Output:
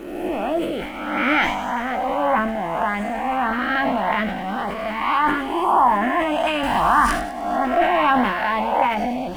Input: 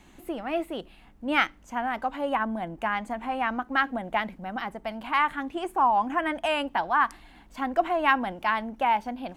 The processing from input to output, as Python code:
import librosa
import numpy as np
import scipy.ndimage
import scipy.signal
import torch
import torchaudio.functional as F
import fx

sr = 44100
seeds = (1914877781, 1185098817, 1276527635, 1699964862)

p1 = fx.spec_swells(x, sr, rise_s=1.37)
p2 = fx.transient(p1, sr, attack_db=-1, sustain_db=6)
p3 = fx.doubler(p2, sr, ms=20.0, db=-9.0)
p4 = fx.echo_wet_highpass(p3, sr, ms=100, feedback_pct=67, hz=3200.0, wet_db=-5.0)
p5 = fx.quant_dither(p4, sr, seeds[0], bits=6, dither='none')
p6 = p4 + (p5 * 10.0 ** (-10.0 / 20.0))
p7 = fx.high_shelf(p6, sr, hz=2300.0, db=-9.0)
p8 = fx.filter_lfo_notch(p7, sr, shape='saw_up', hz=1.7, low_hz=680.0, high_hz=2800.0, q=2.5)
p9 = fx.bass_treble(p8, sr, bass_db=12, treble_db=9, at=(6.63, 7.07))
p10 = fx.sustainer(p9, sr, db_per_s=55.0)
y = p10 * 10.0 ** (2.0 / 20.0)